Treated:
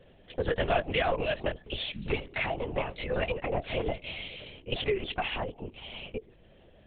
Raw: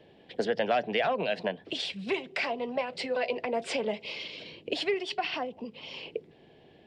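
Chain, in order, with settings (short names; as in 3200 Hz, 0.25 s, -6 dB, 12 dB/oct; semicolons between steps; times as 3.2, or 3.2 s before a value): LPC vocoder at 8 kHz whisper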